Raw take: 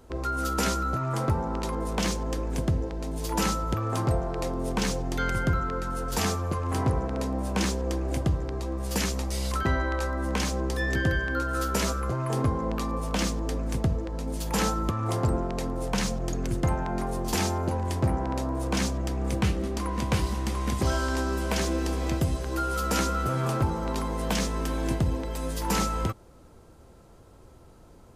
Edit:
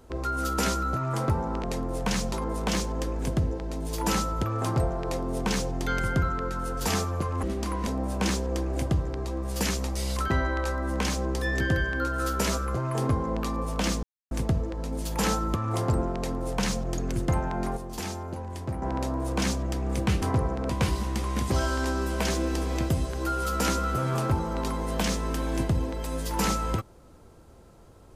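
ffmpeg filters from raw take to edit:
ffmpeg -i in.wav -filter_complex "[0:a]asplit=11[link_01][link_02][link_03][link_04][link_05][link_06][link_07][link_08][link_09][link_10][link_11];[link_01]atrim=end=1.632[link_12];[link_02]atrim=start=15.498:end=16.192[link_13];[link_03]atrim=start=1.628:end=6.742[link_14];[link_04]atrim=start=19.568:end=20.012[link_15];[link_05]atrim=start=7.218:end=13.38,asetpts=PTS-STARTPTS,afade=type=out:start_time=6.158:duration=0.004:curve=hsin[link_16];[link_06]atrim=start=13.38:end=13.66,asetpts=PTS-STARTPTS,volume=0[link_17];[link_07]atrim=start=13.66:end=17.122,asetpts=PTS-STARTPTS,afade=type=in:duration=0.004:curve=hsin[link_18];[link_08]atrim=start=17.118:end=18.172,asetpts=PTS-STARTPTS,volume=-7.5dB[link_19];[link_09]atrim=start=18.168:end=19.572[link_20];[link_10]atrim=start=6.738:end=7.222[link_21];[link_11]atrim=start=20.008[link_22];[link_12][link_13]acrossfade=duration=0.004:curve1=hsin:curve2=hsin[link_23];[link_23][link_14]acrossfade=duration=0.004:curve1=hsin:curve2=hsin[link_24];[link_24][link_15]acrossfade=duration=0.004:curve1=hsin:curve2=hsin[link_25];[link_16][link_17][link_18]concat=n=3:v=0:a=1[link_26];[link_25][link_26]acrossfade=duration=0.004:curve1=hsin:curve2=hsin[link_27];[link_27][link_19]acrossfade=duration=0.004:curve1=hsin:curve2=hsin[link_28];[link_28][link_20]acrossfade=duration=0.004:curve1=hsin:curve2=hsin[link_29];[link_29][link_21]acrossfade=duration=0.004:curve1=hsin:curve2=hsin[link_30];[link_30][link_22]acrossfade=duration=0.004:curve1=hsin:curve2=hsin" out.wav

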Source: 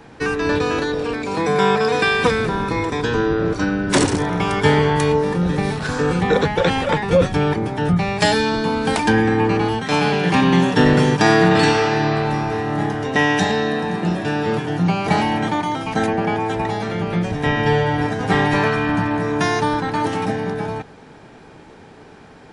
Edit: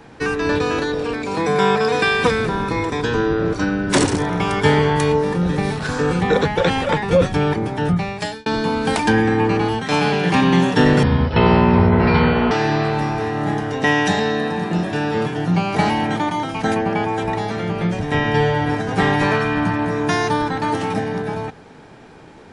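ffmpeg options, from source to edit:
ffmpeg -i in.wav -filter_complex "[0:a]asplit=4[link_01][link_02][link_03][link_04];[link_01]atrim=end=8.46,asetpts=PTS-STARTPTS,afade=type=out:start_time=7.86:duration=0.6[link_05];[link_02]atrim=start=8.46:end=11.034,asetpts=PTS-STARTPTS,afade=type=in:duration=0.004:curve=hsin[link_06];[link_03]atrim=start=11.03:end=11.83,asetpts=PTS-STARTPTS,asetrate=23814,aresample=44100,atrim=end_sample=65333,asetpts=PTS-STARTPTS[link_07];[link_04]atrim=start=11.826[link_08];[link_05][link_06]concat=n=2:v=0:a=1[link_09];[link_09][link_07]acrossfade=duration=0.004:curve1=hsin:curve2=hsin[link_10];[link_10][link_08]acrossfade=duration=0.004:curve1=hsin:curve2=hsin" out.wav

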